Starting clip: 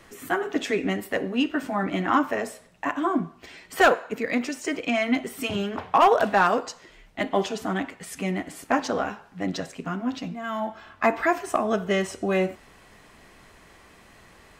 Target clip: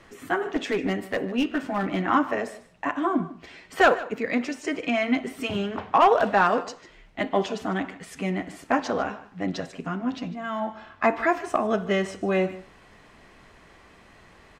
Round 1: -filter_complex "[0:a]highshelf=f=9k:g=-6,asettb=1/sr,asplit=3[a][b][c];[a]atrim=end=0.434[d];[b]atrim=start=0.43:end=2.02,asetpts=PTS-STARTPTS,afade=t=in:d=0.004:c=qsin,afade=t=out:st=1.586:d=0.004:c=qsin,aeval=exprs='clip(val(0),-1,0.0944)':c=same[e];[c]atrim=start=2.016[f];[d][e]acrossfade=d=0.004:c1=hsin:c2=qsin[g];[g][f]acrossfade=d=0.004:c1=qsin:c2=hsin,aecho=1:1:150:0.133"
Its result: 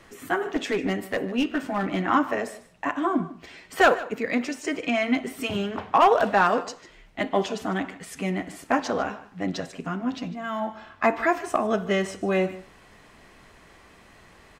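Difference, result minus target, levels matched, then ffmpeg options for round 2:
8000 Hz band +3.0 dB
-filter_complex "[0:a]highshelf=f=9k:g=-15.5,asettb=1/sr,asplit=3[a][b][c];[a]atrim=end=0.434[d];[b]atrim=start=0.43:end=2.02,asetpts=PTS-STARTPTS,afade=t=in:d=0.004:c=qsin,afade=t=out:st=1.586:d=0.004:c=qsin,aeval=exprs='clip(val(0),-1,0.0944)':c=same[e];[c]atrim=start=2.016[f];[d][e]acrossfade=d=0.004:c1=hsin:c2=qsin[g];[g][f]acrossfade=d=0.004:c1=qsin:c2=hsin,aecho=1:1:150:0.133"

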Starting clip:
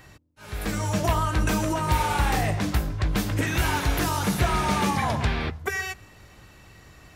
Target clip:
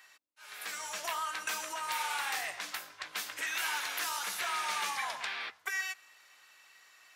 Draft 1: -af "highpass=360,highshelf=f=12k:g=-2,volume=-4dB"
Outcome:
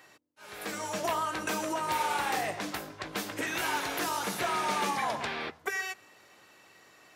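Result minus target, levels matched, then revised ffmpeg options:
500 Hz band +10.5 dB
-af "highpass=1.3k,highshelf=f=12k:g=-2,volume=-4dB"

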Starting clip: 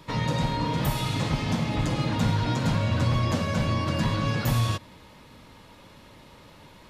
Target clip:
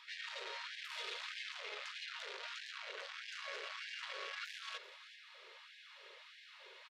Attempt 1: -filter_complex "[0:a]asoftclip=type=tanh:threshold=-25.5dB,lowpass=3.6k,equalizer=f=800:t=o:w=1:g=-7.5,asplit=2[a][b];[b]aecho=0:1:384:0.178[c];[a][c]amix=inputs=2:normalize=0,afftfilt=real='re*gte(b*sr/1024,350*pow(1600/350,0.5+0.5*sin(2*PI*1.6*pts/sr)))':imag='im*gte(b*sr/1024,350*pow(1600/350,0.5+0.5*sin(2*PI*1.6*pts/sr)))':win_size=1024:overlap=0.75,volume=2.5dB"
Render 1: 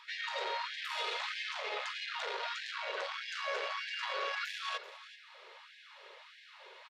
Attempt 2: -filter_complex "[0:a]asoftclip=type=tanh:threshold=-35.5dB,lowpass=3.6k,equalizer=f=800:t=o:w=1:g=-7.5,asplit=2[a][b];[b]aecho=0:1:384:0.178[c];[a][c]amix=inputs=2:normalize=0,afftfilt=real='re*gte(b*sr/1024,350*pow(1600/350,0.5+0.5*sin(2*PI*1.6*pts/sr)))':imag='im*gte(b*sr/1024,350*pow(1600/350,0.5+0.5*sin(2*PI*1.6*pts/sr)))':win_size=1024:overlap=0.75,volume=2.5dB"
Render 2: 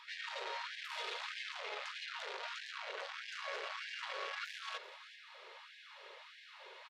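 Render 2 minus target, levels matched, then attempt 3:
1000 Hz band +3.5 dB
-filter_complex "[0:a]asoftclip=type=tanh:threshold=-35.5dB,lowpass=3.6k,equalizer=f=800:t=o:w=1:g=-18,asplit=2[a][b];[b]aecho=0:1:384:0.178[c];[a][c]amix=inputs=2:normalize=0,afftfilt=real='re*gte(b*sr/1024,350*pow(1600/350,0.5+0.5*sin(2*PI*1.6*pts/sr)))':imag='im*gte(b*sr/1024,350*pow(1600/350,0.5+0.5*sin(2*PI*1.6*pts/sr)))':win_size=1024:overlap=0.75,volume=2.5dB"

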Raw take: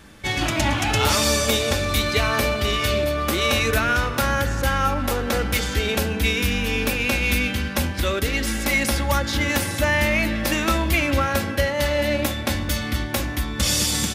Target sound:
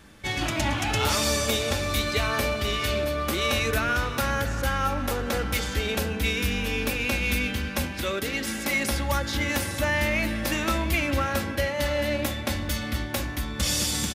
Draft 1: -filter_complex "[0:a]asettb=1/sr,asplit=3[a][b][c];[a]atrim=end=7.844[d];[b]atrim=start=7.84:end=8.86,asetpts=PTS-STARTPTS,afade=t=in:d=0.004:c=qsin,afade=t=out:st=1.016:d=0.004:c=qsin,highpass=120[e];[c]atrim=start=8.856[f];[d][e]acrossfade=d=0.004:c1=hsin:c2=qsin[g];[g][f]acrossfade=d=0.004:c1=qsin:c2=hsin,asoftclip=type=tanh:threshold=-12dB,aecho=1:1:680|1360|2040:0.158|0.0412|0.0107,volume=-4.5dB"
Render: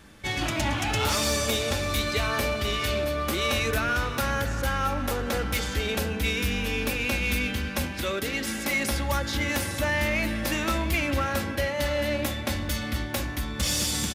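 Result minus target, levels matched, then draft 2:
soft clip: distortion +14 dB
-filter_complex "[0:a]asettb=1/sr,asplit=3[a][b][c];[a]atrim=end=7.844[d];[b]atrim=start=7.84:end=8.86,asetpts=PTS-STARTPTS,afade=t=in:d=0.004:c=qsin,afade=t=out:st=1.016:d=0.004:c=qsin,highpass=120[e];[c]atrim=start=8.856[f];[d][e]acrossfade=d=0.004:c1=hsin:c2=qsin[g];[g][f]acrossfade=d=0.004:c1=qsin:c2=hsin,asoftclip=type=tanh:threshold=-4dB,aecho=1:1:680|1360|2040:0.158|0.0412|0.0107,volume=-4.5dB"

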